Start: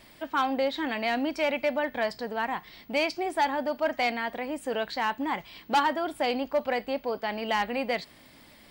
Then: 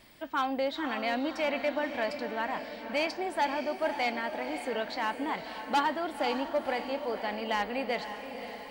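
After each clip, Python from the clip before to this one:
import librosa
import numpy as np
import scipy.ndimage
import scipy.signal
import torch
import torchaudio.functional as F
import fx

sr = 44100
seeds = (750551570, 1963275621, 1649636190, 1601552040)

y = fx.echo_diffused(x, sr, ms=535, feedback_pct=56, wet_db=-9)
y = y * 10.0 ** (-3.5 / 20.0)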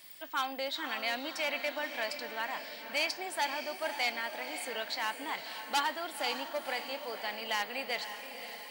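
y = fx.tilt_eq(x, sr, slope=4.0)
y = y * 10.0 ** (-4.0 / 20.0)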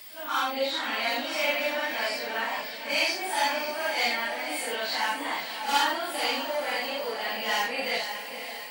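y = fx.phase_scramble(x, sr, seeds[0], window_ms=200)
y = y * 10.0 ** (7.0 / 20.0)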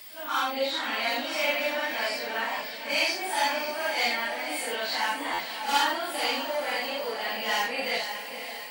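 y = fx.buffer_glitch(x, sr, at_s=(5.33,), block=512, repeats=4)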